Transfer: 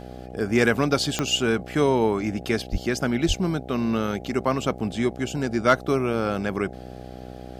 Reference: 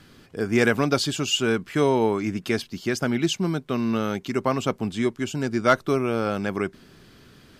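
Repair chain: de-click; de-hum 62.6 Hz, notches 13; 2.71–2.83 HPF 140 Hz 24 dB/oct; 3.27–3.39 HPF 140 Hz 24 dB/oct

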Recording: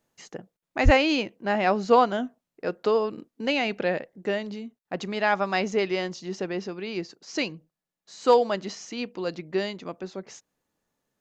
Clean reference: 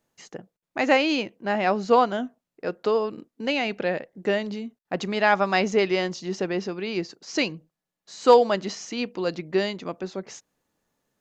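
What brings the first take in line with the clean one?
0.84–0.96 HPF 140 Hz 24 dB/oct; gain 0 dB, from 4.16 s +3.5 dB

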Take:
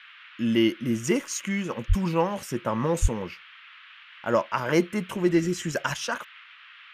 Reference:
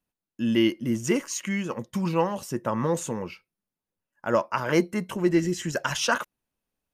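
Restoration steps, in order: 1.88–2 HPF 140 Hz 24 dB/oct; 3.01–3.13 HPF 140 Hz 24 dB/oct; noise print and reduce 30 dB; 5.94 gain correction +6 dB

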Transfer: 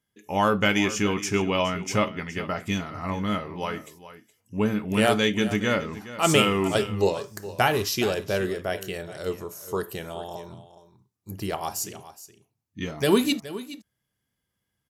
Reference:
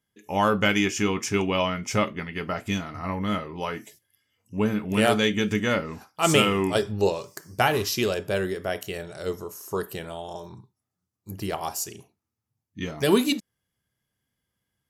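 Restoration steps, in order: inverse comb 0.419 s -15 dB

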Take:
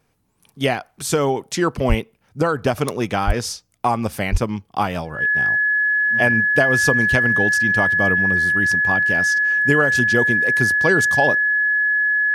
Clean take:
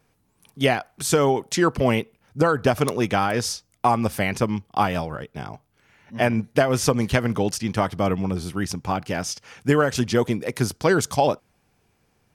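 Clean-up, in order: notch 1700 Hz, Q 30; 1.88–2 HPF 140 Hz 24 dB/oct; 3.26–3.38 HPF 140 Hz 24 dB/oct; 4.31–4.43 HPF 140 Hz 24 dB/oct

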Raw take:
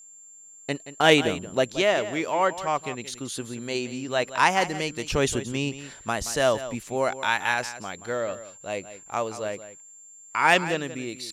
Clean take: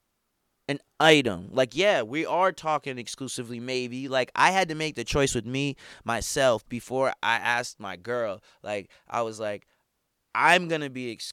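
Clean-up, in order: notch 7300 Hz, Q 30; inverse comb 0.176 s -13.5 dB

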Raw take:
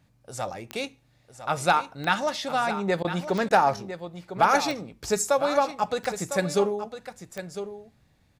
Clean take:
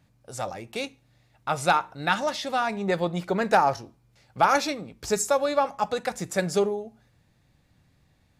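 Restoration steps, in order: de-click; interpolate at 3.03/3.49, 14 ms; inverse comb 1.004 s -11 dB

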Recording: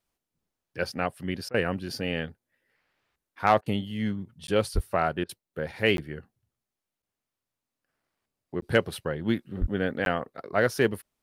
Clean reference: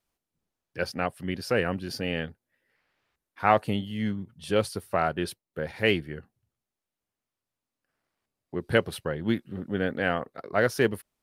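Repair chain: clip repair -7.5 dBFS; 4.74–4.86 HPF 140 Hz 24 dB/oct; 9.6–9.72 HPF 140 Hz 24 dB/oct; interpolate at 4.47/5.97/7.02/8.61/10.05, 12 ms; interpolate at 1.49/3.61/5.24, 50 ms

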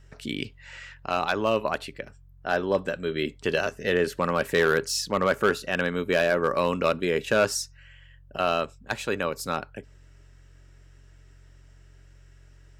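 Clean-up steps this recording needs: clip repair -13 dBFS; de-hum 45.2 Hz, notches 3

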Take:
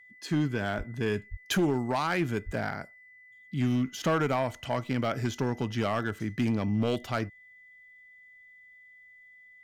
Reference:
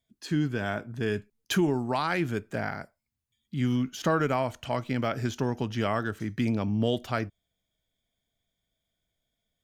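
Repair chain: clip repair -20.5 dBFS; notch 2000 Hz, Q 30; 0.77–0.89 HPF 140 Hz 24 dB/oct; 1.3–1.42 HPF 140 Hz 24 dB/oct; 2.45–2.57 HPF 140 Hz 24 dB/oct

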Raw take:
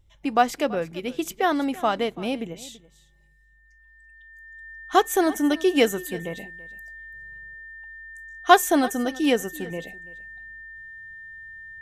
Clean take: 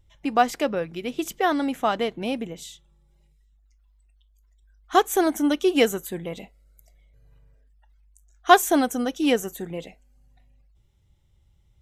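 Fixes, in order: notch 1800 Hz, Q 30; inverse comb 0.333 s -19.5 dB

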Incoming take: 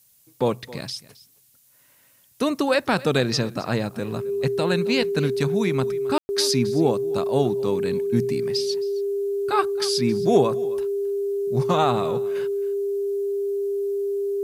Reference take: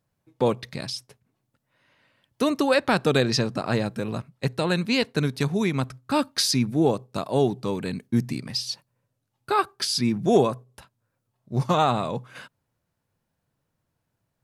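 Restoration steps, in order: notch 400 Hz, Q 30; room tone fill 6.18–6.29; expander -49 dBFS, range -21 dB; inverse comb 0.268 s -19 dB

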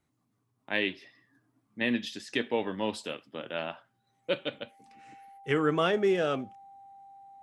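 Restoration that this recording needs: notch 790 Hz, Q 30

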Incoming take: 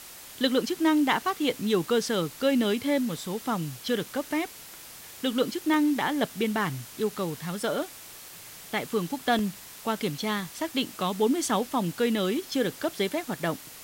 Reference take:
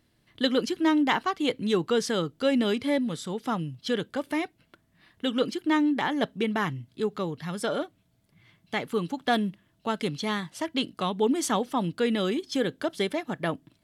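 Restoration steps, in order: interpolate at 5.74/9.39, 1.3 ms; denoiser 21 dB, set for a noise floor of -45 dBFS

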